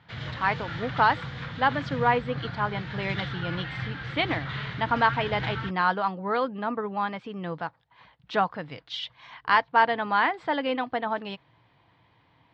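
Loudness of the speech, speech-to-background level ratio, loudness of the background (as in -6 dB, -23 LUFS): -27.5 LUFS, 7.0 dB, -34.5 LUFS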